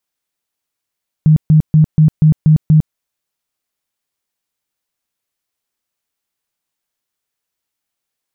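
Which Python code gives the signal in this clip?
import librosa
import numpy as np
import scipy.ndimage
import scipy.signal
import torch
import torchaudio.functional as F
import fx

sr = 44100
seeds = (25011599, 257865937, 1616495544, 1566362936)

y = fx.tone_burst(sr, hz=155.0, cycles=16, every_s=0.24, bursts=7, level_db=-4.5)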